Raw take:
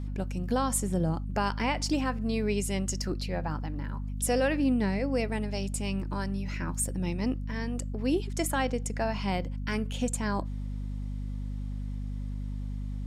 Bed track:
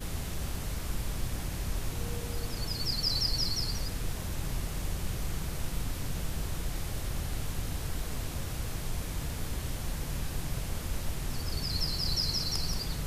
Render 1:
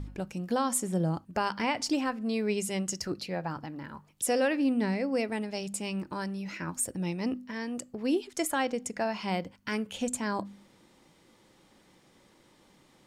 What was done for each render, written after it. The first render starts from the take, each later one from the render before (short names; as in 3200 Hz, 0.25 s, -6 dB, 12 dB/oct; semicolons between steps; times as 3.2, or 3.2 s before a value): de-hum 50 Hz, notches 5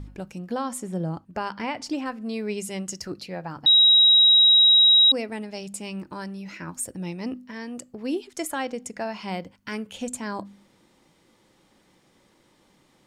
0.39–2.06 high shelf 4600 Hz -7 dB; 3.66–5.12 bleep 3830 Hz -12 dBFS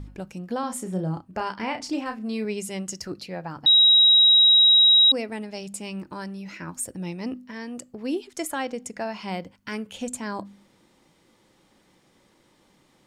0.6–2.45 doubler 32 ms -7 dB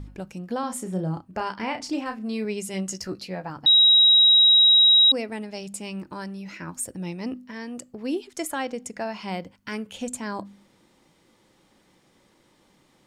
2.72–3.5 doubler 16 ms -6 dB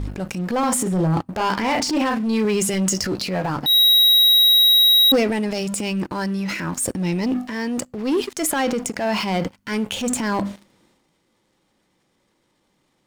sample leveller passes 3; transient shaper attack -6 dB, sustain +7 dB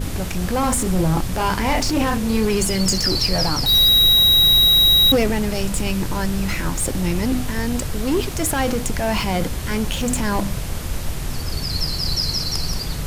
add bed track +8.5 dB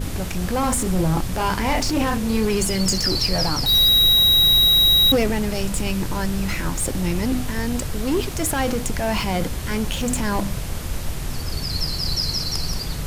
gain -1.5 dB